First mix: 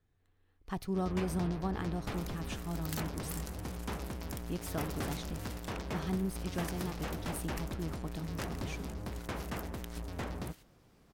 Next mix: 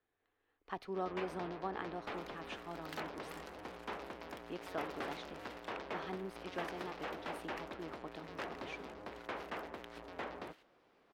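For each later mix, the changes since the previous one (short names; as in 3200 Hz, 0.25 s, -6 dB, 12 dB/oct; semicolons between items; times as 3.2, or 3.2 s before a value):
master: add three-band isolator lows -22 dB, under 310 Hz, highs -20 dB, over 3900 Hz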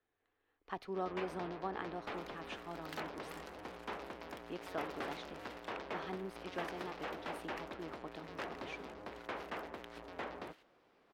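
none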